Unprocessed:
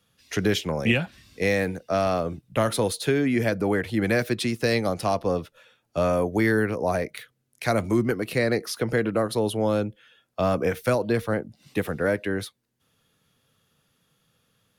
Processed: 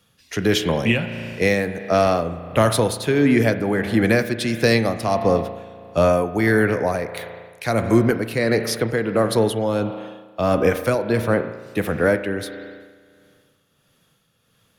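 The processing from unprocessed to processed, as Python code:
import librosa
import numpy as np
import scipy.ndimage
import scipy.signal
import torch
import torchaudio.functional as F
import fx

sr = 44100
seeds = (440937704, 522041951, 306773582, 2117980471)

y = fx.rev_spring(x, sr, rt60_s=1.9, pass_ms=(35,), chirp_ms=65, drr_db=9.0)
y = y * (1.0 - 0.47 / 2.0 + 0.47 / 2.0 * np.cos(2.0 * np.pi * 1.5 * (np.arange(len(y)) / sr)))
y = y * 10.0 ** (6.5 / 20.0)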